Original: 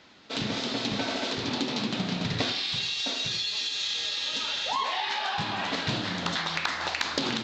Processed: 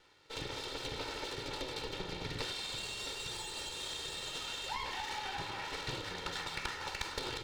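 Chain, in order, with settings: minimum comb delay 2.2 ms; high shelf 6800 Hz -5 dB; gain -8 dB

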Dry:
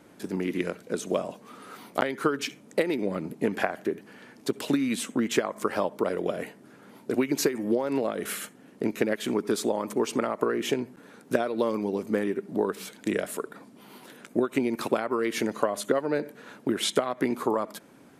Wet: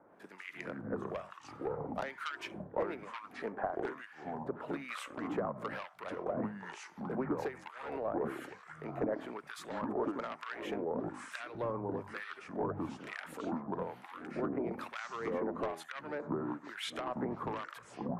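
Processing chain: three-band isolator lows -15 dB, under 570 Hz, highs -19 dB, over 2300 Hz; echoes that change speed 0.122 s, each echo -5 st, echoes 3; soft clip -25.5 dBFS, distortion -13 dB; harmonic tremolo 1.1 Hz, depth 100%, crossover 1300 Hz; gain +1 dB

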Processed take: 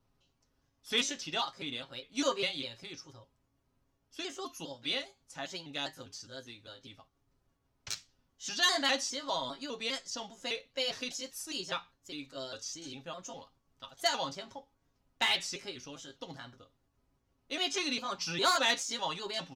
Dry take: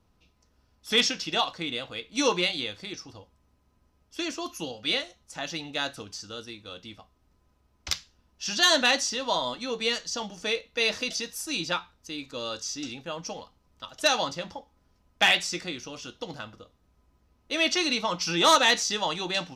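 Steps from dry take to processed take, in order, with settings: trilling pitch shifter +2 st, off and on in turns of 0.202 s; comb 7.4 ms, depth 55%; gain -8 dB

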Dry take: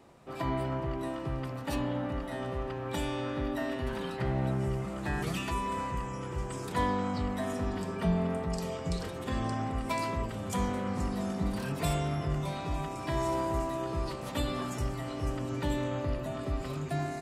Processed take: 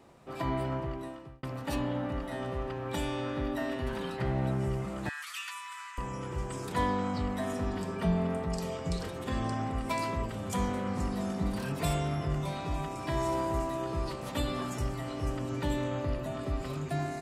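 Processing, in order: 0.75–1.43 fade out; 5.09–5.98 steep high-pass 1200 Hz 36 dB/oct

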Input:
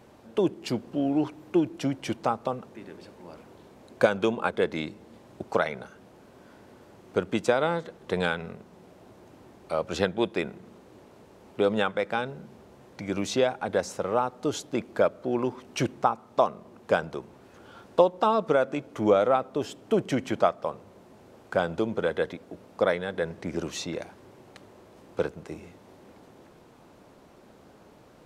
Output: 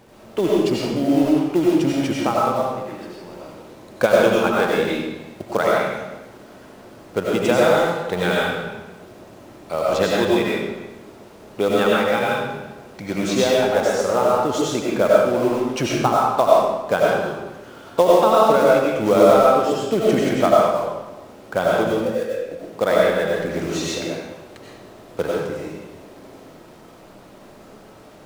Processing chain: 21.92–22.45 vowel filter e; in parallel at -5 dB: companded quantiser 4-bit; on the sum: digital reverb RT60 1.1 s, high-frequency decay 0.9×, pre-delay 55 ms, DRR -5 dB; gain -1 dB

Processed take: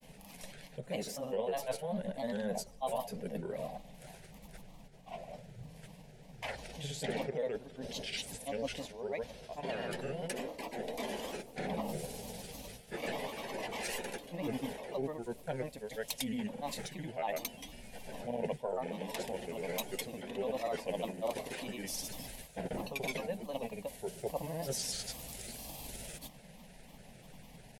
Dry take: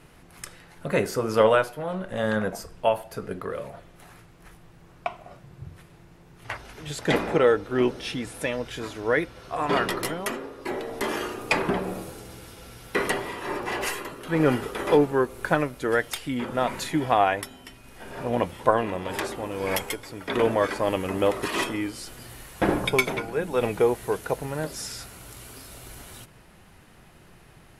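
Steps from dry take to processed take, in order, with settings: reverse; compressor 6:1, threshold -33 dBFS, peak gain reduction 18.5 dB; reverse; fixed phaser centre 340 Hz, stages 6; grains, pitch spread up and down by 3 st; gain +2 dB

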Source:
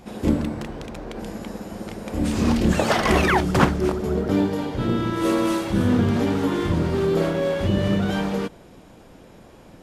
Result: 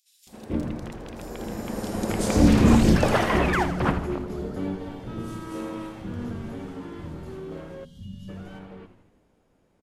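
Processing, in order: Doppler pass-by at 2.01, 9 m/s, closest 2.7 m; on a send: frequency-shifting echo 81 ms, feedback 62%, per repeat -100 Hz, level -11 dB; on the sum: spectral gain 7.58–8.02, 260–2800 Hz -23 dB; bands offset in time highs, lows 0.27 s, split 3800 Hz; gain +8 dB

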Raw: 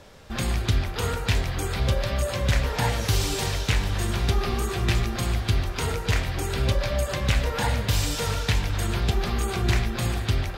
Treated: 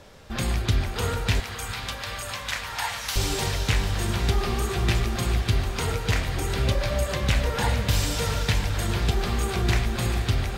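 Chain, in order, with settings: 1.4–3.16 inverse Chebyshev high-pass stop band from 180 Hz, stop band 70 dB; diffused feedback echo 0.482 s, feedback 70%, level -13 dB

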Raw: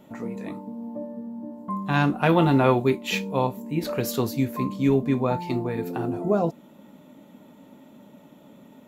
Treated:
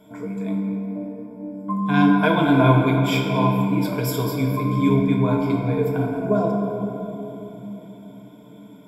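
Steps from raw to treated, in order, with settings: ripple EQ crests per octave 1.7, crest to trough 17 dB; reverb RT60 3.5 s, pre-delay 7 ms, DRR 0.5 dB; gain -3 dB

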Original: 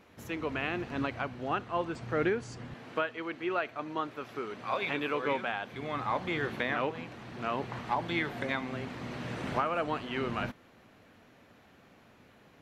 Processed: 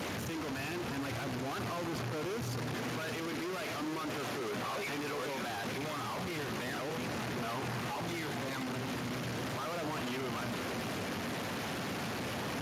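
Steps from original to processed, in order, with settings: infinite clipping; high shelf 9500 Hz -4 dB; buzz 400 Hz, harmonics 5, -54 dBFS -7 dB/oct; in parallel at -9.5 dB: decimation with a swept rate 27×, swing 160% 0.37 Hz; on the sum: soft clip -35.5 dBFS, distortion -18 dB; on a send: darkening echo 0.465 s, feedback 27%, low-pass 1500 Hz, level -11 dB; on the sum: Speex 36 kbps 32000 Hz

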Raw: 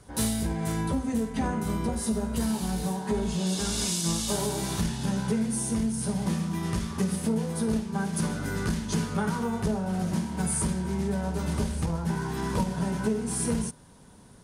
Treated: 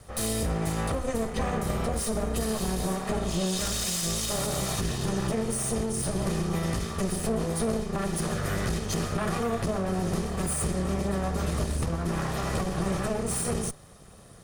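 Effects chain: minimum comb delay 1.6 ms; limiter -23.5 dBFS, peak gain reduction 7 dB; gain +4 dB

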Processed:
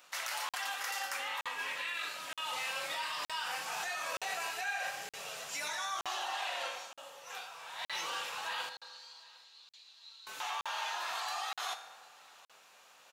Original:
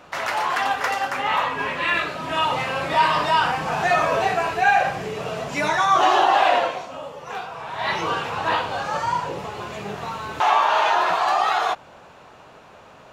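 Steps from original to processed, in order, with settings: differentiator; in parallel at +0.5 dB: negative-ratio compressor -38 dBFS, ratio -0.5; 8.69–10.27 on the sum: band-pass 4100 Hz, Q 7.4; feedback echo 0.753 s, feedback 24%, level -23.5 dB; reverb RT60 1.3 s, pre-delay 3 ms, DRR 7 dB; crackling interface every 0.92 s, samples 2048, zero, from 0.49; gain -7.5 dB

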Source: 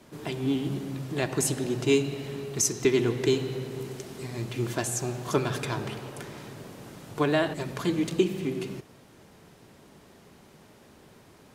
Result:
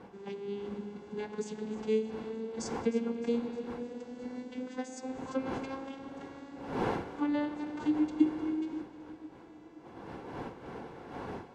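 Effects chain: vocoder on a gliding note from G3, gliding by +11 st; wind noise 630 Hz -39 dBFS; low shelf 170 Hz -6.5 dB; in parallel at 0 dB: compressor, threshold -34 dBFS, peak gain reduction 18.5 dB; on the sum: notch comb 620 Hz; on a send: split-band echo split 350 Hz, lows 0.519 s, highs 0.307 s, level -16 dB; on the sum: gain -6.5 dB

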